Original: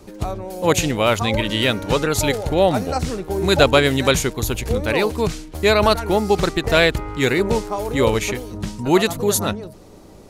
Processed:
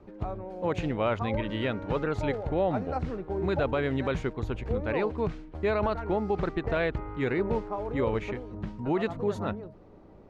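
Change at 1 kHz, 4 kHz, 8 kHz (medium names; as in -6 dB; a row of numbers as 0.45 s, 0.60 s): -11.0 dB, -22.0 dB, under -30 dB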